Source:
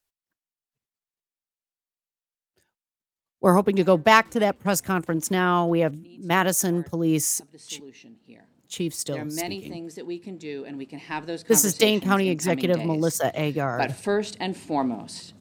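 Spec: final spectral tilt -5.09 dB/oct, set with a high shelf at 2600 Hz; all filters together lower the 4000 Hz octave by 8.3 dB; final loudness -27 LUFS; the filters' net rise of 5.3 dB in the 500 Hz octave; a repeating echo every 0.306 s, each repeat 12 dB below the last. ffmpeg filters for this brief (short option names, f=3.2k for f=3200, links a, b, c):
-af "equalizer=f=500:t=o:g=7,highshelf=f=2.6k:g=-5.5,equalizer=f=4k:t=o:g=-7.5,aecho=1:1:306|612|918:0.251|0.0628|0.0157,volume=-6.5dB"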